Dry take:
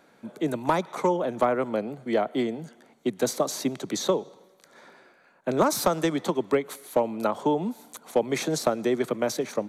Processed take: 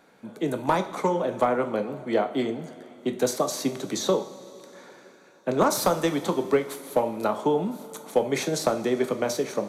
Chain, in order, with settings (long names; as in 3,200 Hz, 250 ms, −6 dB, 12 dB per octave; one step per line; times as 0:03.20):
coupled-rooms reverb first 0.39 s, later 4 s, from −18 dB, DRR 6 dB